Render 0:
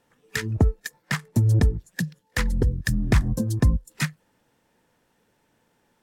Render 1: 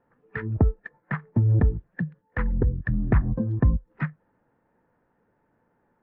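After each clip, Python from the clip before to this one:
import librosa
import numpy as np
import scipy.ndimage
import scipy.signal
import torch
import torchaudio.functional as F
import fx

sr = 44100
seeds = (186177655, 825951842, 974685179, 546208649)

y = scipy.signal.sosfilt(scipy.signal.butter(4, 1700.0, 'lowpass', fs=sr, output='sos'), x)
y = y * librosa.db_to_amplitude(-1.0)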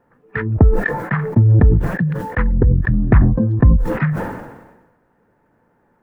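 y = fx.sustainer(x, sr, db_per_s=50.0)
y = y * librosa.db_to_amplitude(8.5)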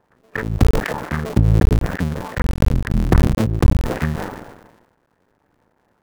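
y = fx.cycle_switch(x, sr, every=2, mode='muted')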